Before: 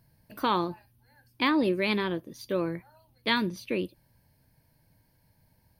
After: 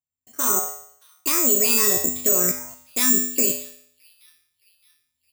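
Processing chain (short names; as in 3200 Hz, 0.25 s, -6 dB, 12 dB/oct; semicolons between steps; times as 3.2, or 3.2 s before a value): Doppler pass-by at 2.34, 8 m/s, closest 3.3 m; gate with hold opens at -59 dBFS; high shelf 3800 Hz +5.5 dB; level quantiser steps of 22 dB; resonator 77 Hz, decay 0.66 s, harmonics odd, mix 90%; on a send: thin delay 0.672 s, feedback 49%, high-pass 3400 Hz, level -19 dB; on the sum: AGC gain up to 12 dB; speed mistake 44.1 kHz file played as 48 kHz; careless resampling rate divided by 6×, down filtered, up zero stuff; maximiser +23 dB; gain -1.5 dB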